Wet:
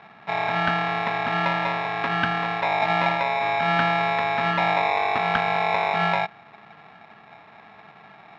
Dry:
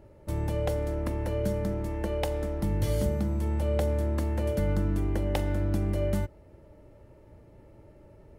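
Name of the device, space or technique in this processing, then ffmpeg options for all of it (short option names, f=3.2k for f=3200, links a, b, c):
ring modulator pedal into a guitar cabinet: -af "aeval=exprs='val(0)*sgn(sin(2*PI*760*n/s))':c=same,highpass=75,equalizer=f=210:t=q:w=4:g=4,equalizer=f=360:t=q:w=4:g=-6,equalizer=f=530:t=q:w=4:g=-6,equalizer=f=1.7k:t=q:w=4:g=10,lowpass=f=3.5k:w=0.5412,lowpass=f=3.5k:w=1.3066,volume=4.5dB"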